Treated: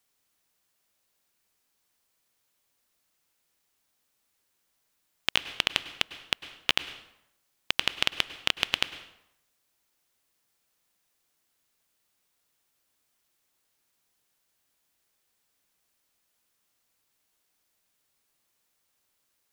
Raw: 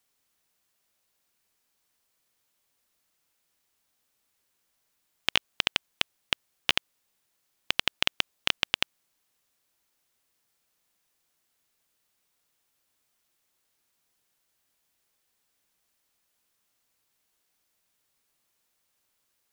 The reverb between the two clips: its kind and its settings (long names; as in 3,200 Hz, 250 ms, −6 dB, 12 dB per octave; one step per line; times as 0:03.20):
dense smooth reverb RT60 0.8 s, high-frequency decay 0.75×, pre-delay 90 ms, DRR 13 dB